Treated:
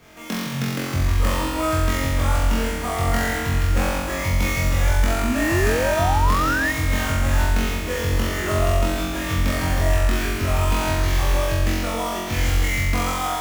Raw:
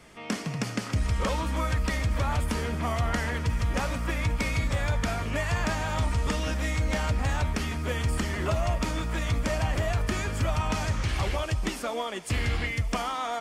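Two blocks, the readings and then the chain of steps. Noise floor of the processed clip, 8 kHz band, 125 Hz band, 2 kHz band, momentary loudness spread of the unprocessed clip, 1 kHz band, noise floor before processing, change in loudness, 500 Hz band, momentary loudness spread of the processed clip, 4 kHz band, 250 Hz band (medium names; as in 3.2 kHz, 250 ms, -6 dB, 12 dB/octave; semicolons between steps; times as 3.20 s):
-27 dBFS, +8.5 dB, +5.5 dB, +7.5 dB, 3 LU, +7.5 dB, -37 dBFS, +7.0 dB, +7.5 dB, 5 LU, +6.5 dB, +7.0 dB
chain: sample-rate reducer 9 kHz, jitter 20%; flutter echo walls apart 3.8 m, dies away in 1.4 s; painted sound rise, 5.23–6.72 s, 220–1900 Hz -23 dBFS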